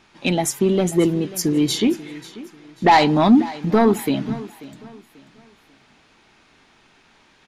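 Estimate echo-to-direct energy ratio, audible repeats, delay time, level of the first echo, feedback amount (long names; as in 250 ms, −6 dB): −17.5 dB, 2, 539 ms, −18.0 dB, 32%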